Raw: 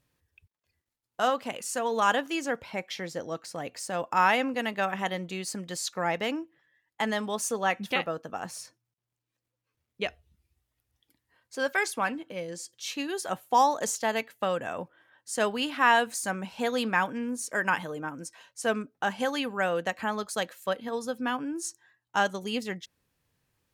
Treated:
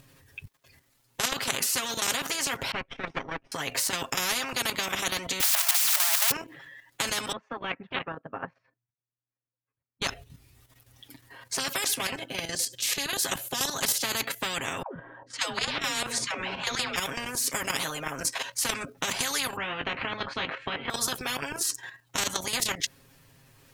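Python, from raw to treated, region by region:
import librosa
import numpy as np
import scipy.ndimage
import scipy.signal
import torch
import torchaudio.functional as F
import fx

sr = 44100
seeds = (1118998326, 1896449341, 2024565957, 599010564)

y = fx.chain(x, sr, fx.lower_of_two(delay_ms=0.34),
    fx.lowpass(hz=1900.0, slope=12),
    fx.upward_expand(threshold_db=-51.0, expansion=2.5), at=(2.71, 3.52))
y = fx.chain(y, sr, fx.crossing_spikes(level_db=-21.5),
    fx.brickwall_highpass(low_hz=600.0), at=(5.4, 6.31))
y = fx.chain(y, sr, fx.lowpass(hz=2200.0, slope=24),
    fx.upward_expand(threshold_db=-43.0, expansion=2.5), at=(7.32, 10.02))
y = fx.chain(y, sr, fx.peak_eq(hz=1300.0, db=-4.0, octaves=1.4),
    fx.notch(hz=1100.0, q=12.0),
    fx.notch_comb(f0_hz=460.0), at=(11.59, 14.04))
y = fx.chain(y, sr, fx.env_lowpass(base_hz=980.0, full_db=-21.5),
    fx.high_shelf(hz=6400.0, db=-11.5),
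    fx.dispersion(late='lows', ms=146.0, hz=460.0), at=(14.82, 16.96))
y = fx.chain(y, sr, fx.lowpass(hz=2500.0, slope=24),
    fx.doubler(ms=20.0, db=-4.0), at=(19.56, 20.9))
y = y + 0.87 * np.pad(y, (int(7.4 * sr / 1000.0), 0))[:len(y)]
y = fx.level_steps(y, sr, step_db=10)
y = fx.spectral_comp(y, sr, ratio=10.0)
y = y * 10.0 ** (6.0 / 20.0)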